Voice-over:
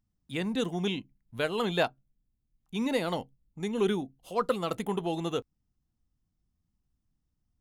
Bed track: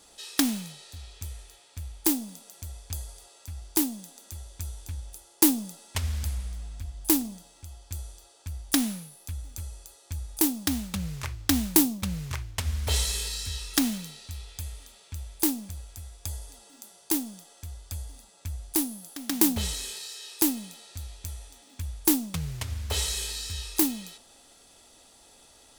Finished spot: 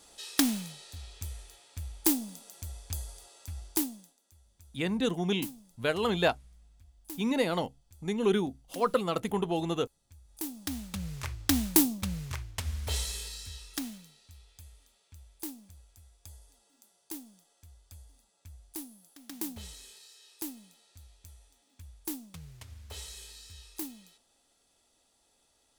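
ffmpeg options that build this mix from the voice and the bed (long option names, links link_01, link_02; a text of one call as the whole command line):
ffmpeg -i stem1.wav -i stem2.wav -filter_complex "[0:a]adelay=4450,volume=1dB[link_01];[1:a]volume=17dB,afade=type=out:start_time=3.58:duration=0.59:silence=0.105925,afade=type=in:start_time=10.24:duration=1.07:silence=0.11885,afade=type=out:start_time=11.91:duration=2.16:silence=0.237137[link_02];[link_01][link_02]amix=inputs=2:normalize=0" out.wav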